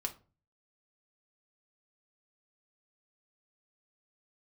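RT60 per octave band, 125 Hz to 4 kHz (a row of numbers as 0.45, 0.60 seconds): 0.60, 0.50, 0.40, 0.30, 0.25, 0.25 seconds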